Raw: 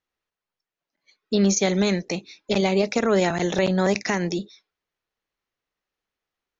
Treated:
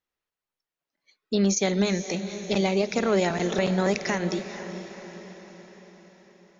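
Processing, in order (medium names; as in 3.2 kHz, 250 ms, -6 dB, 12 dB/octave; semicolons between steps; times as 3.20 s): echo that smears into a reverb 469 ms, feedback 54%, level -11 dB; trim -3 dB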